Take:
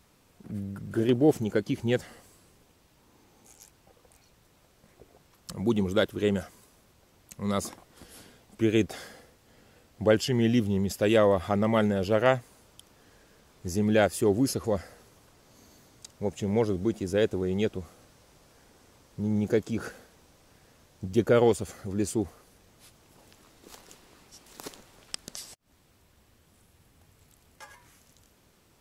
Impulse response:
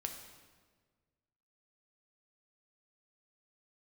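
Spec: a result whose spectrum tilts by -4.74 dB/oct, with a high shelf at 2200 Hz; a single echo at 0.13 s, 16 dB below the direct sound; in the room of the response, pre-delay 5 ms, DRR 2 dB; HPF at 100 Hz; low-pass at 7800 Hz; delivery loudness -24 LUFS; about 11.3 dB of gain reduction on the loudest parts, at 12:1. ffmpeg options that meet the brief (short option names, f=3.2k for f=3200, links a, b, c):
-filter_complex "[0:a]highpass=100,lowpass=7.8k,highshelf=f=2.2k:g=6.5,acompressor=threshold=-27dB:ratio=12,aecho=1:1:130:0.158,asplit=2[a][b];[1:a]atrim=start_sample=2205,adelay=5[c];[b][c]afir=irnorm=-1:irlink=0,volume=-1dB[d];[a][d]amix=inputs=2:normalize=0,volume=7.5dB"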